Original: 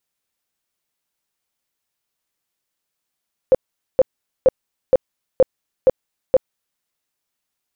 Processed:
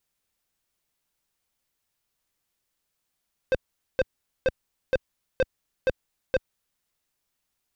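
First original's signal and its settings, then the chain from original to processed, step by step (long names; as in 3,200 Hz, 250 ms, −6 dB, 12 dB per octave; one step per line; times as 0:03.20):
tone bursts 521 Hz, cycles 14, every 0.47 s, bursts 7, −7 dBFS
low-shelf EQ 95 Hz +10.5 dB
soft clipping −19.5 dBFS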